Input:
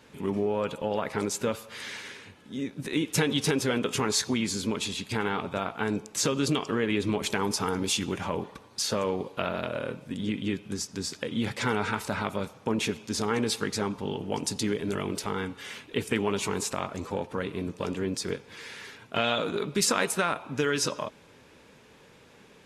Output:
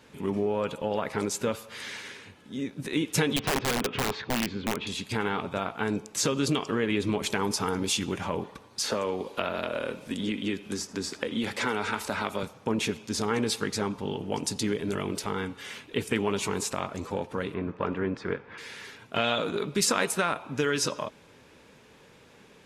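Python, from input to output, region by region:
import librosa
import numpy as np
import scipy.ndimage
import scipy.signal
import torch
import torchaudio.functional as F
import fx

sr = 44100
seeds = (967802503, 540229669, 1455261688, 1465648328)

y = fx.chain(x, sr, fx.lowpass(hz=3000.0, slope=24),
    fx.overflow_wrap(gain_db=20.5), at=(3.36, 4.87))
y = fx.chain(y, sr, fx.peak_eq(hz=130.0, db=-11.5, octaves=0.83),
    fx.echo_single(ms=80, db=-22.0),
    fx.band_squash(depth_pct=70), at=(8.83, 12.43))
y = fx.chain(y, sr, fx.lowpass(hz=2000.0, slope=12),
    fx.peak_eq(hz=1400.0, db=7.5, octaves=1.7), at=(17.54, 18.58))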